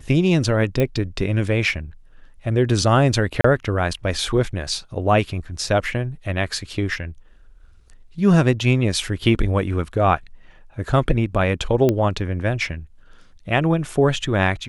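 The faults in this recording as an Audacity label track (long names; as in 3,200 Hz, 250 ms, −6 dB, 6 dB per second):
0.800000	0.800000	click −9 dBFS
3.410000	3.440000	drop-out 34 ms
11.890000	11.890000	click −7 dBFS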